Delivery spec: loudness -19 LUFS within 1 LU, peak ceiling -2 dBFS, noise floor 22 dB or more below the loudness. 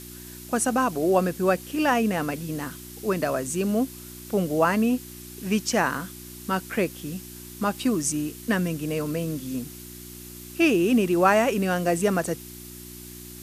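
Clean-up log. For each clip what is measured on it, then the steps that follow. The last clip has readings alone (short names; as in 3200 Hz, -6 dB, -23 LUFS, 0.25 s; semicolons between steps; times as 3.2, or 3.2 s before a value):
hum 60 Hz; harmonics up to 360 Hz; hum level -44 dBFS; noise floor -42 dBFS; noise floor target -47 dBFS; loudness -25.0 LUFS; peak -5.5 dBFS; loudness target -19.0 LUFS
-> de-hum 60 Hz, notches 6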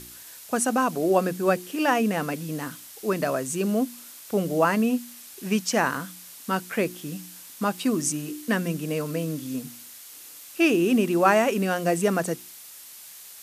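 hum none; noise floor -45 dBFS; noise floor target -47 dBFS
-> noise print and reduce 6 dB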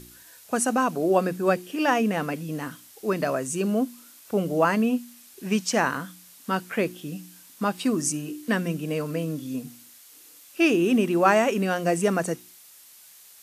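noise floor -51 dBFS; loudness -25.0 LUFS; peak -5.0 dBFS; loudness target -19.0 LUFS
-> gain +6 dB; limiter -2 dBFS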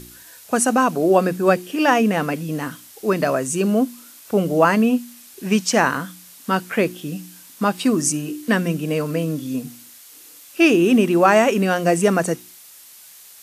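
loudness -19.5 LUFS; peak -2.0 dBFS; noise floor -45 dBFS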